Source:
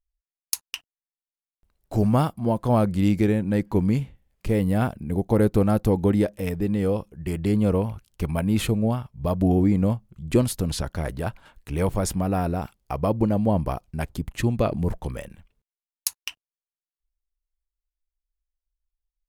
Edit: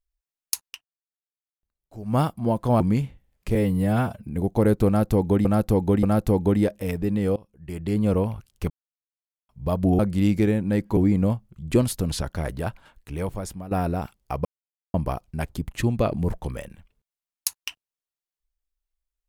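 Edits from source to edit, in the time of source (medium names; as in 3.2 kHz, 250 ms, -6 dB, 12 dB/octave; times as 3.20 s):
0.65–2.19 s: dip -16.5 dB, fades 0.14 s
2.80–3.78 s: move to 9.57 s
4.53–5.01 s: stretch 1.5×
5.61–6.19 s: loop, 3 plays
6.94–7.70 s: fade in, from -23 dB
8.28–9.07 s: mute
11.23–12.31 s: fade out, to -14 dB
13.05–13.54 s: mute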